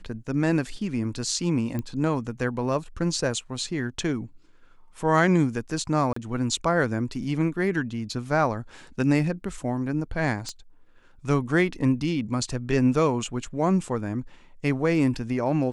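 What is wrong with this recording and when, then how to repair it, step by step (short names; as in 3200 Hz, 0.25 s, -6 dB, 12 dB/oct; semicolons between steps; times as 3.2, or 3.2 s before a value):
1.79 pop -18 dBFS
6.13–6.16 gap 34 ms
10.49 pop -21 dBFS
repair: de-click; interpolate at 6.13, 34 ms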